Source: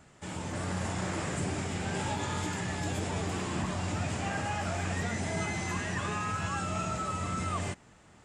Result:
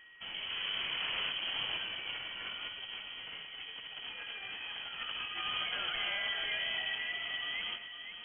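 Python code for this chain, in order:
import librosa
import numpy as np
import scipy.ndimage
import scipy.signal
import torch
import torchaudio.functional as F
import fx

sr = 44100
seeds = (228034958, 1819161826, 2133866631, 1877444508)

p1 = fx.doppler_pass(x, sr, speed_mps=18, closest_m=26.0, pass_at_s=3.38)
p2 = fx.over_compress(p1, sr, threshold_db=-39.0, ratio=-0.5)
p3 = fx.peak_eq(p2, sr, hz=740.0, db=3.0, octaves=0.2)
p4 = p3 + fx.echo_multitap(p3, sr, ms=(111, 510), db=(-11.0, -8.5), dry=0)
p5 = p4 + 10.0 ** (-55.0 / 20.0) * np.sin(2.0 * np.pi * 1300.0 * np.arange(len(p4)) / sr)
y = fx.freq_invert(p5, sr, carrier_hz=3200)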